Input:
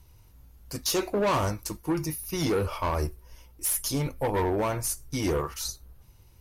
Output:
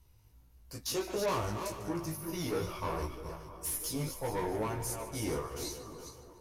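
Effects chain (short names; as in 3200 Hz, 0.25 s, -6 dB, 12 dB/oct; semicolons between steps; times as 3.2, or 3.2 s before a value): regenerating reverse delay 0.21 s, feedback 47%, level -7 dB; chorus 1.6 Hz, delay 16.5 ms, depth 2.3 ms; split-band echo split 1500 Hz, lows 0.645 s, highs 0.147 s, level -15 dB; gain -5.5 dB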